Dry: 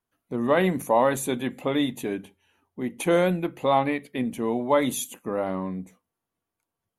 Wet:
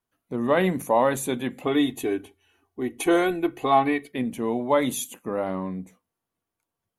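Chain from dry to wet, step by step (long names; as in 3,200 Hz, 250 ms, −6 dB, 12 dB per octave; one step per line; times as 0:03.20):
0:01.66–0:04.12: comb filter 2.7 ms, depth 78%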